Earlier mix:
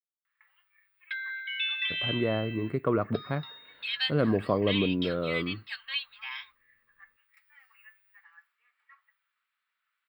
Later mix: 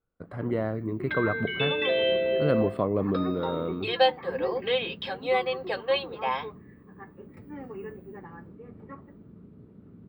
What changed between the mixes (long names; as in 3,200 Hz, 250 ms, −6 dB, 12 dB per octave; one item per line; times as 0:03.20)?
speech: entry −1.70 s
background: remove inverse Chebyshev high-pass filter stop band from 370 Hz, stop band 70 dB